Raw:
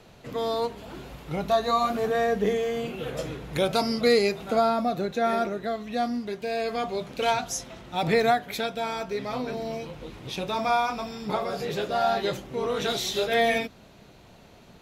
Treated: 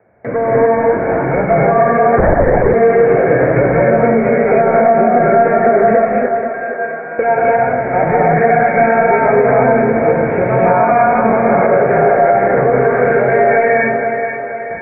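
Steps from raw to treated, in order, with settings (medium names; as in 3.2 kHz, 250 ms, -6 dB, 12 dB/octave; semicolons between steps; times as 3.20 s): high-pass 61 Hz 24 dB/octave; hum notches 50/100/150/200/250/300/350/400 Hz; 5.97–7.19 s: feedback comb 160 Hz, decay 1.3 s, mix 100%; compression, threshold -31 dBFS, peak gain reduction 14.5 dB; saturation -31 dBFS, distortion -14 dB; rippled Chebyshev low-pass 2.3 kHz, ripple 9 dB; gate with hold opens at -45 dBFS; on a send: two-band feedback delay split 340 Hz, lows 236 ms, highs 479 ms, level -8 dB; on the sum: gated-style reverb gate 330 ms rising, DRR -5.5 dB; 2.18–2.74 s: LPC vocoder at 8 kHz whisper; loudness maximiser +25.5 dB; trim -1 dB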